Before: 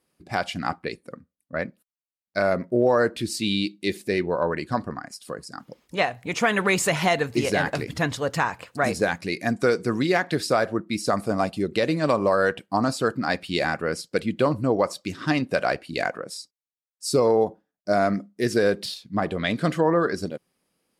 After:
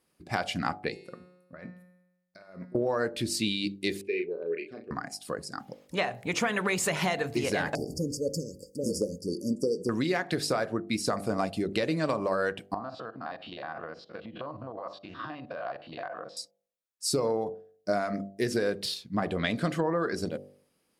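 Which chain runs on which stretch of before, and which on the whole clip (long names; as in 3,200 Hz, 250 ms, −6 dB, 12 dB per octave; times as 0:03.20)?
0:00.90–0:02.75: compressor whose output falls as the input rises −33 dBFS + tuned comb filter 180 Hz, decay 0.97 s, mix 80%
0:04.01–0:04.91: pair of resonant band-passes 990 Hz, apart 2.6 octaves + double-tracking delay 36 ms −6.5 dB
0:07.75–0:09.89: linear-phase brick-wall band-stop 580–4,500 Hz + parametric band 120 Hz −9 dB 0.65 octaves
0:12.74–0:16.37: spectrum averaged block by block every 50 ms + downward compressor 16 to 1, threshold −33 dBFS + loudspeaker in its box 130–3,600 Hz, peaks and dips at 180 Hz −7 dB, 260 Hz −5 dB, 400 Hz −6 dB, 690 Hz +7 dB, 1,100 Hz +7 dB, 2,200 Hz −9 dB
whole clip: downward compressor, threshold −24 dBFS; hum removal 49.16 Hz, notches 17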